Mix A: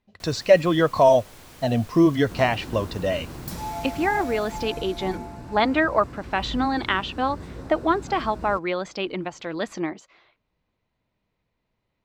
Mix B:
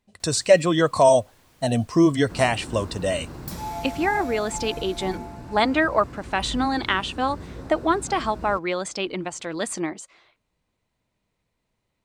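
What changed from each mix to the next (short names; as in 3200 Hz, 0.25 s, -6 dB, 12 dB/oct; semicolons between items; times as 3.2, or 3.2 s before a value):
speech: remove running mean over 5 samples; first sound -11.5 dB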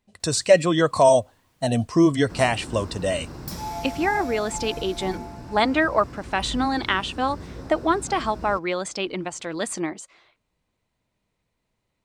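first sound -8.5 dB; second sound: add bell 5300 Hz +7 dB 0.3 oct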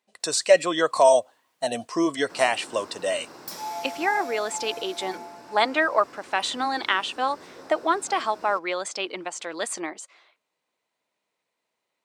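first sound -4.5 dB; master: add HPF 450 Hz 12 dB/oct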